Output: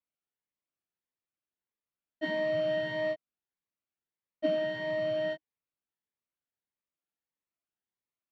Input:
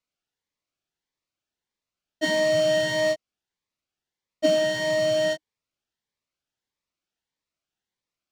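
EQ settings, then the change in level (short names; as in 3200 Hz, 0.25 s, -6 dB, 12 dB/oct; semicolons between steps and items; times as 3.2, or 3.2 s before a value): air absorption 450 m; low shelf 120 Hz -9.5 dB; bell 710 Hz -3 dB 2.4 oct; -3.5 dB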